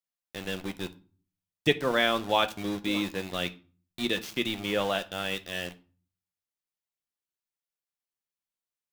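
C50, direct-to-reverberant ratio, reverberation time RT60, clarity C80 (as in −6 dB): 18.0 dB, 8.5 dB, 0.40 s, 23.5 dB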